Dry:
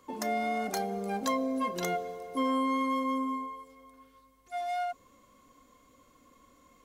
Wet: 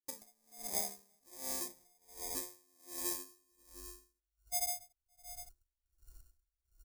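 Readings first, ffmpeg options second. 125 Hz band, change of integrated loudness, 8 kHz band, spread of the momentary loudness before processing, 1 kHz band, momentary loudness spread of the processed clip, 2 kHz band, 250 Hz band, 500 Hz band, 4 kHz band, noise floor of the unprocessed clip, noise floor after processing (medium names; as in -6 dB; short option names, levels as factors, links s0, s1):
under -15 dB, -7.5 dB, +5.5 dB, 9 LU, -20.0 dB, 19 LU, -16.0 dB, -22.0 dB, -17.5 dB, -4.0 dB, -63 dBFS, under -85 dBFS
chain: -filter_complex "[0:a]asubboost=boost=11.5:cutoff=80,afwtdn=0.0112,equalizer=f=380:t=o:w=2.3:g=-5,acrusher=samples=31:mix=1:aa=0.000001,acompressor=threshold=0.00631:ratio=3,bandreject=f=87.39:t=h:w=4,bandreject=f=174.78:t=h:w=4,bandreject=f=262.17:t=h:w=4,bandreject=f=349.56:t=h:w=4,asplit=2[s0][s1];[s1]aecho=0:1:565:0.251[s2];[s0][s2]amix=inputs=2:normalize=0,aexciter=amount=8.6:drive=5.4:freq=4700,agate=range=0.0224:threshold=0.001:ratio=3:detection=peak,aeval=exprs='val(0)*pow(10,-37*(0.5-0.5*cos(2*PI*1.3*n/s))/20)':c=same,volume=1.12"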